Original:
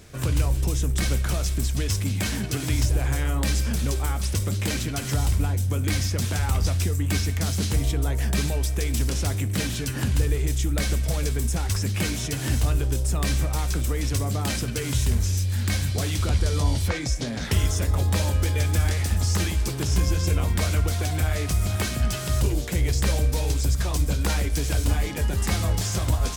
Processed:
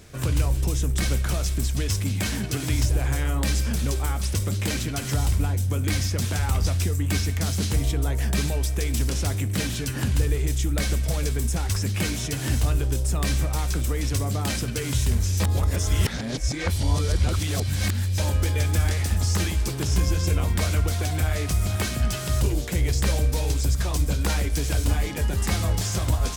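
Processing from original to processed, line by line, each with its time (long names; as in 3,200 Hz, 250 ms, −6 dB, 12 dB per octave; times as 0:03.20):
0:15.40–0:18.18: reverse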